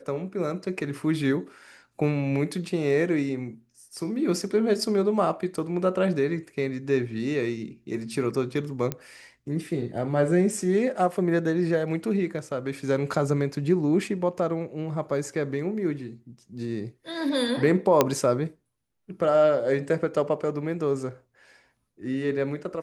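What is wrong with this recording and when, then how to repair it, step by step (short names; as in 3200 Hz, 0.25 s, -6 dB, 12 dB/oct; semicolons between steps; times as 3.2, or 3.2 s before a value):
8.92 pop -14 dBFS
18.01 pop -4 dBFS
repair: de-click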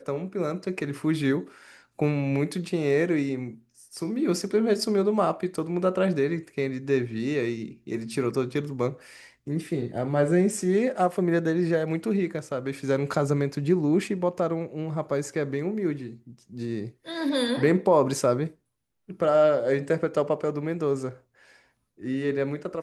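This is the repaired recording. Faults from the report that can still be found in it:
none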